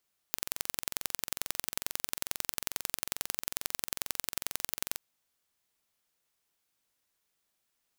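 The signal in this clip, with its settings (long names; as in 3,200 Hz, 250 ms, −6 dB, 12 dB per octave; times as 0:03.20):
impulse train 22.3 per second, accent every 2, −2.5 dBFS 4.66 s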